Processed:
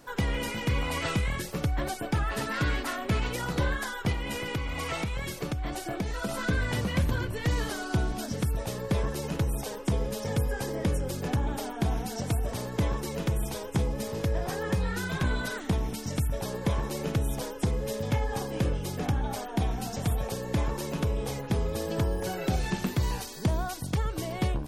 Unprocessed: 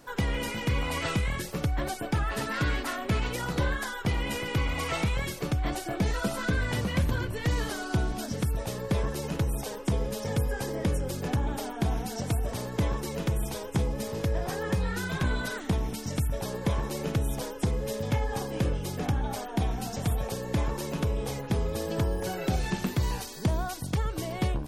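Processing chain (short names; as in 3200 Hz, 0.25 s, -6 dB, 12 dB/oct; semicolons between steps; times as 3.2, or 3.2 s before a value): 4.12–6.29 compressor, threshold -28 dBFS, peak gain reduction 7 dB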